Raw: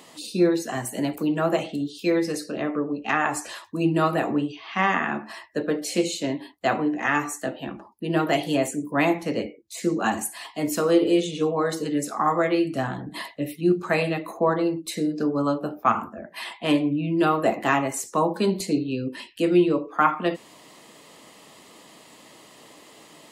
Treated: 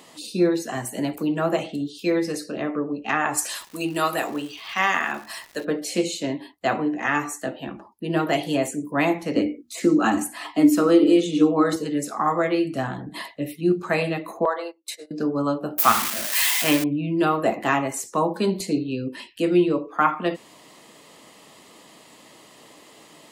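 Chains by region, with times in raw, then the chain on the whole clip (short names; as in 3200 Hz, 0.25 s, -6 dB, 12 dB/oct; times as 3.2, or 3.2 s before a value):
3.37–5.64 RIAA curve recording + crackle 310/s -35 dBFS
9.36–11.76 notches 60/120/180/240 Hz + small resonant body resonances 290/1300 Hz, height 15 dB, ringing for 0.1 s + three-band squash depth 40%
14.45–15.11 HPF 520 Hz 24 dB/oct + gate -36 dBFS, range -19 dB
15.78–16.84 switching spikes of -13 dBFS + dynamic EQ 1900 Hz, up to +7 dB, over -35 dBFS, Q 1.2
whole clip: dry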